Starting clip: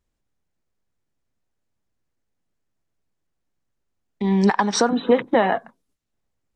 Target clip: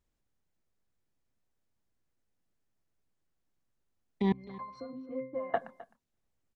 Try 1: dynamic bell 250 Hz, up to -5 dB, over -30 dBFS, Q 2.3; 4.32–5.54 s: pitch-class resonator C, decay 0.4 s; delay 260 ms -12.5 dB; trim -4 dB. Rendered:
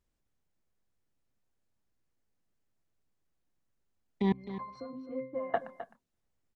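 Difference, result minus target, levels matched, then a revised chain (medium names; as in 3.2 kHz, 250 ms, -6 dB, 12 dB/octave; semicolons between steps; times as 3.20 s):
echo-to-direct +6.5 dB
dynamic bell 250 Hz, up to -5 dB, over -30 dBFS, Q 2.3; 4.32–5.54 s: pitch-class resonator C, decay 0.4 s; delay 260 ms -19 dB; trim -4 dB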